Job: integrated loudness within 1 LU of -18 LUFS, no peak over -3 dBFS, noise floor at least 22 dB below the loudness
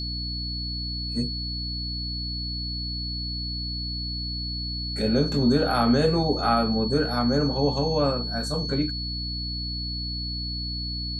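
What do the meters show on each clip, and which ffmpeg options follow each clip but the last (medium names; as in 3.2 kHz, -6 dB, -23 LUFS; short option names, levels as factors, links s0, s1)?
hum 60 Hz; highest harmonic 300 Hz; hum level -30 dBFS; steady tone 4.4 kHz; tone level -31 dBFS; loudness -26.0 LUFS; peak level -9.5 dBFS; loudness target -18.0 LUFS
-> -af "bandreject=f=60:t=h:w=4,bandreject=f=120:t=h:w=4,bandreject=f=180:t=h:w=4,bandreject=f=240:t=h:w=4,bandreject=f=300:t=h:w=4"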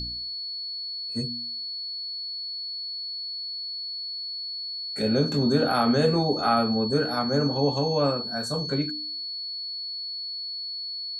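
hum not found; steady tone 4.4 kHz; tone level -31 dBFS
-> -af "bandreject=f=4400:w=30"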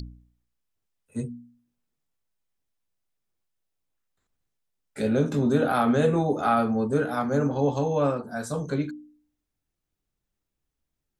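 steady tone not found; loudness -25.0 LUFS; peak level -9.0 dBFS; loudness target -18.0 LUFS
-> -af "volume=2.24,alimiter=limit=0.708:level=0:latency=1"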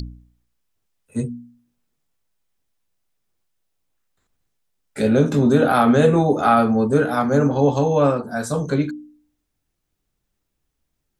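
loudness -18.0 LUFS; peak level -3.0 dBFS; noise floor -76 dBFS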